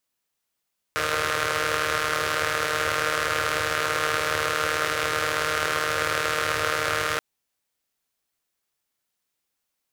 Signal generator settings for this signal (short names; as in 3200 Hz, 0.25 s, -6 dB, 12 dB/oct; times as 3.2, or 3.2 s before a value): four-cylinder engine model, steady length 6.23 s, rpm 4600, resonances 100/520/1300 Hz